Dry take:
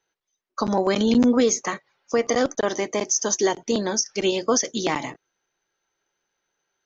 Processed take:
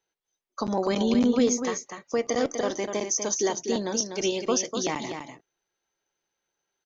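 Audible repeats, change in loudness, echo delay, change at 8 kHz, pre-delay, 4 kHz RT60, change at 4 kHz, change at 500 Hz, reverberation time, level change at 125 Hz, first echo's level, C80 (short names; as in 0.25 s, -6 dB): 1, -4.0 dB, 0.247 s, n/a, none, none, -4.0 dB, -4.0 dB, none, -3.5 dB, -7.0 dB, none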